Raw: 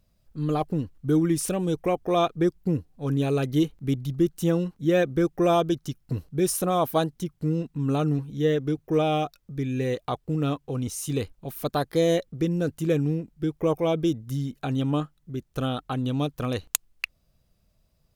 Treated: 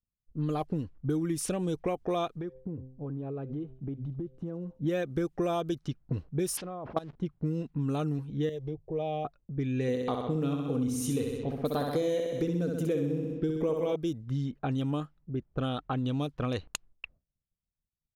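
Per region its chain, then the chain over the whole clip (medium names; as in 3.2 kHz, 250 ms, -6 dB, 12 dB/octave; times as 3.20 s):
2.34–4.80 s: de-hum 130 Hz, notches 7 + compression 12:1, threshold -32 dBFS + feedback echo behind a high-pass 74 ms, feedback 79%, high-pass 3.6 kHz, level -11 dB
6.57–7.17 s: jump at every zero crossing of -35 dBFS + level held to a coarse grid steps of 19 dB + decimation joined by straight lines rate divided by 3×
8.49–9.25 s: bass shelf 180 Hz +6.5 dB + compression 2:1, threshold -30 dBFS + static phaser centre 580 Hz, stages 4
9.88–13.96 s: small resonant body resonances 260/460 Hz, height 10 dB, ringing for 75 ms + flutter echo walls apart 10.9 m, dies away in 0.84 s
whole clip: level-controlled noise filter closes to 350 Hz, open at -21 dBFS; expander -50 dBFS; compression, threshold -27 dBFS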